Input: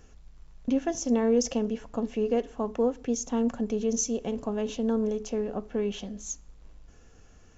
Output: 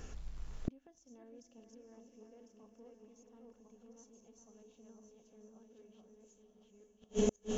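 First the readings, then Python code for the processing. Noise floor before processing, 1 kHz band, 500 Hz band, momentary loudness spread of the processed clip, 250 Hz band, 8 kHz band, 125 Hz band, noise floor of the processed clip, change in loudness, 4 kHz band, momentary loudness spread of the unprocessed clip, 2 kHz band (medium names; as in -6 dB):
-54 dBFS, -20.5 dB, -15.5 dB, 25 LU, -17.0 dB, no reading, -9.0 dB, -69 dBFS, -11.5 dB, -14.5 dB, 8 LU, -15.5 dB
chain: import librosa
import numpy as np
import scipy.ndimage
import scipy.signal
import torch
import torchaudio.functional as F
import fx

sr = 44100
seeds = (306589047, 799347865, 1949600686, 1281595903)

y = fx.reverse_delay_fb(x, sr, ms=526, feedback_pct=48, wet_db=-1.5)
y = fx.echo_diffused(y, sr, ms=495, feedback_pct=50, wet_db=-8.0)
y = fx.gate_flip(y, sr, shuts_db=-25.0, range_db=-40)
y = y * librosa.db_to_amplitude(5.5)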